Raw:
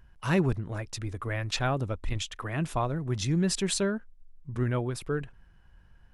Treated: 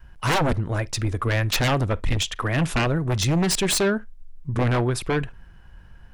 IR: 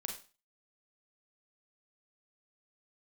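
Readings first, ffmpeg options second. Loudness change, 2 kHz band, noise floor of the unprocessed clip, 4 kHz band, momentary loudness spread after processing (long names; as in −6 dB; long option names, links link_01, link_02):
+7.0 dB, +9.5 dB, −57 dBFS, +9.0 dB, 6 LU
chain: -filter_complex "[0:a]adynamicequalizer=threshold=0.0126:dfrequency=200:dqfactor=0.98:tfrequency=200:tqfactor=0.98:attack=5:release=100:ratio=0.375:range=2.5:mode=cutabove:tftype=bell,aeval=exprs='0.2*(cos(1*acos(clip(val(0)/0.2,-1,1)))-cos(1*PI/2))+0.02*(cos(5*acos(clip(val(0)/0.2,-1,1)))-cos(5*PI/2))+0.0224*(cos(7*acos(clip(val(0)/0.2,-1,1)))-cos(7*PI/2))':channel_layout=same,aeval=exprs='0.237*sin(PI/2*4.47*val(0)/0.237)':channel_layout=same,asplit=2[link_01][link_02];[1:a]atrim=start_sample=2205,atrim=end_sample=3528,lowpass=4500[link_03];[link_02][link_03]afir=irnorm=-1:irlink=0,volume=-17dB[link_04];[link_01][link_04]amix=inputs=2:normalize=0,volume=-4.5dB"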